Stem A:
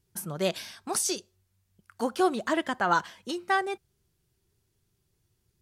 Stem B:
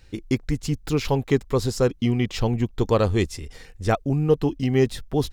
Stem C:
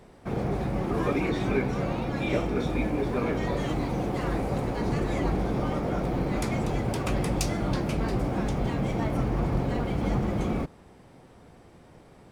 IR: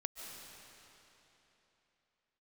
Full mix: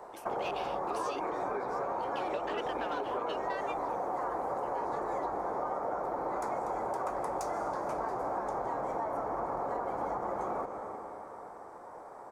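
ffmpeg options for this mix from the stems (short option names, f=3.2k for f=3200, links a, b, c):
-filter_complex "[0:a]equalizer=f=2.7k:w=2.4:g=13.5,asoftclip=type=hard:threshold=-22dB,volume=-8dB[a];[1:a]volume=-15.5dB[b];[2:a]firequalizer=gain_entry='entry(230,0);entry(930,11);entry(2800,-19);entry(6700,2)':delay=0.05:min_phase=1,volume=0.5dB,asplit=2[c][d];[d]volume=-5.5dB[e];[b][c]amix=inputs=2:normalize=0,highshelf=f=7.4k:g=7.5,acompressor=threshold=-29dB:ratio=6,volume=0dB[f];[3:a]atrim=start_sample=2205[g];[e][g]afir=irnorm=-1:irlink=0[h];[a][f][h]amix=inputs=3:normalize=0,acrossover=split=380 4900:gain=0.1 1 0.224[i][j][k];[i][j][k]amix=inputs=3:normalize=0,acompressor=threshold=-31dB:ratio=6"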